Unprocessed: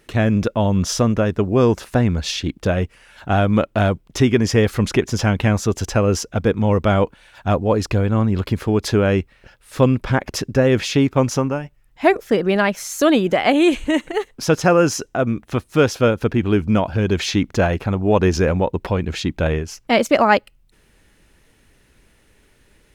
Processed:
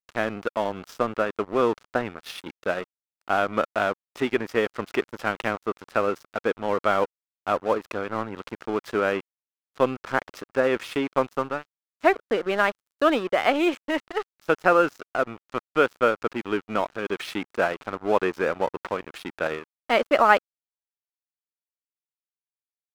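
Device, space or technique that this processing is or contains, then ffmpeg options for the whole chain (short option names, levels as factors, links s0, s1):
pocket radio on a weak battery: -af "highpass=370,lowpass=3200,aeval=exprs='sgn(val(0))*max(abs(val(0))-0.0251,0)':c=same,equalizer=f=1300:t=o:w=0.41:g=6,volume=0.708"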